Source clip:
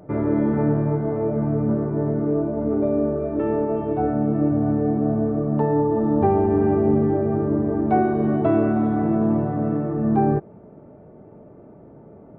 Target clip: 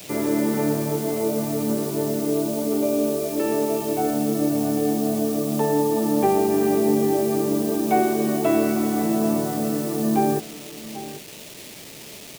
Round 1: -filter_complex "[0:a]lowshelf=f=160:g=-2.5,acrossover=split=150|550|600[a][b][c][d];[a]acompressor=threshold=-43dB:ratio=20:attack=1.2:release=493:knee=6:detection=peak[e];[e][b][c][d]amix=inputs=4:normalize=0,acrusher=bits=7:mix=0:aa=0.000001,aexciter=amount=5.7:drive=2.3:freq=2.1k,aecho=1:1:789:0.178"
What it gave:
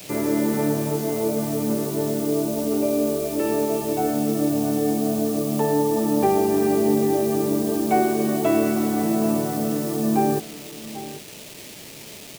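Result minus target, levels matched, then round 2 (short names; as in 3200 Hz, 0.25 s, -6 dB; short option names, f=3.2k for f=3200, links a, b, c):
compressor: peak gain reduction -8 dB
-filter_complex "[0:a]lowshelf=f=160:g=-2.5,acrossover=split=150|550|600[a][b][c][d];[a]acompressor=threshold=-51.5dB:ratio=20:attack=1.2:release=493:knee=6:detection=peak[e];[e][b][c][d]amix=inputs=4:normalize=0,acrusher=bits=7:mix=0:aa=0.000001,aexciter=amount=5.7:drive=2.3:freq=2.1k,aecho=1:1:789:0.178"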